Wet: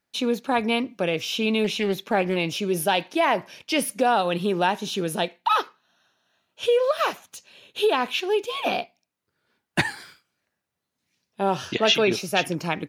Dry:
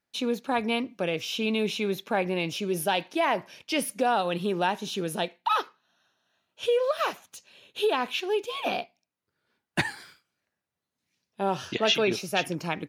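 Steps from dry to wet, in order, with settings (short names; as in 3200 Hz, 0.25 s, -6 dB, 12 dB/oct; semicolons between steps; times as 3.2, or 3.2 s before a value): 1.64–2.36 Doppler distortion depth 0.21 ms; gain +4 dB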